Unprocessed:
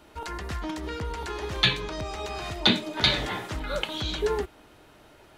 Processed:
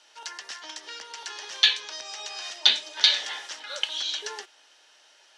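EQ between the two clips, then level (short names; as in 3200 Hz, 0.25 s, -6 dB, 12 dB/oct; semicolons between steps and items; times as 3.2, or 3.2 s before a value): speaker cabinet 470–9500 Hz, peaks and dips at 540 Hz +4 dB, 850 Hz +5 dB, 1700 Hz +8 dB, 3000 Hz +7 dB, 5700 Hz +7 dB; tilt +2.5 dB/oct; bell 5000 Hz +9.5 dB 1.5 oct; -11.0 dB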